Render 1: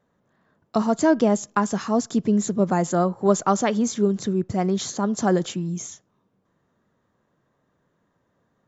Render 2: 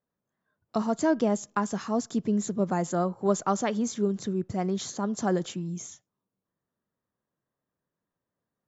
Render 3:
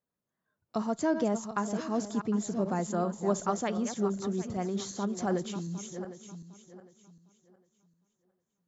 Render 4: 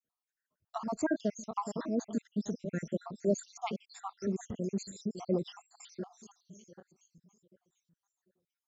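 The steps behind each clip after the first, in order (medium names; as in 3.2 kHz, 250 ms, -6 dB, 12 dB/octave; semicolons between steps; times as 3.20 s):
spectral noise reduction 12 dB; trim -6 dB
backward echo that repeats 378 ms, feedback 50%, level -9 dB; trim -4 dB
random holes in the spectrogram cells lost 70%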